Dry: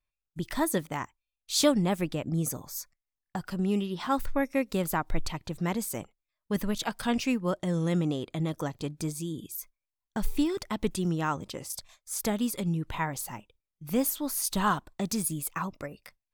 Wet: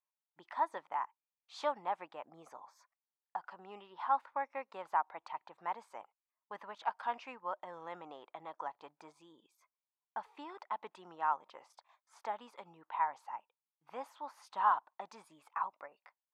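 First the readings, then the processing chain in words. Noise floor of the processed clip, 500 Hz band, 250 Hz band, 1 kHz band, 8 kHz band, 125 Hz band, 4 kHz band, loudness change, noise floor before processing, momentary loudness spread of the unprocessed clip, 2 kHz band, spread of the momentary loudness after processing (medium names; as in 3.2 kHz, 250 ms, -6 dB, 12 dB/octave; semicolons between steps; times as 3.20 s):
under -85 dBFS, -13.0 dB, -29.0 dB, -0.5 dB, under -30 dB, under -35 dB, -20.0 dB, -9.0 dB, under -85 dBFS, 12 LU, -9.5 dB, 19 LU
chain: ladder band-pass 1 kHz, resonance 60%; trim +4.5 dB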